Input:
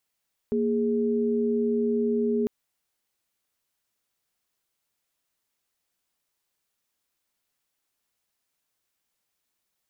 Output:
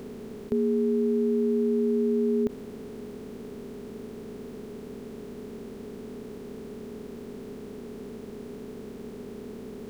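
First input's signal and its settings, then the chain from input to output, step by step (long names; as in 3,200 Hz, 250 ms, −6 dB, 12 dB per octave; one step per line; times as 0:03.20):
held notes A#3/G#4 sine, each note −24.5 dBFS 1.95 s
compressor on every frequency bin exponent 0.2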